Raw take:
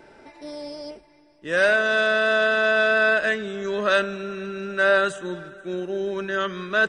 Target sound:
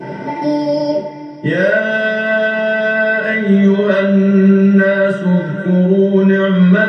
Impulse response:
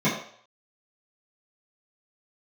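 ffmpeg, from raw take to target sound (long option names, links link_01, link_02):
-filter_complex "[0:a]acompressor=threshold=-39dB:ratio=3[link_01];[1:a]atrim=start_sample=2205,asetrate=39249,aresample=44100[link_02];[link_01][link_02]afir=irnorm=-1:irlink=0,volume=5dB"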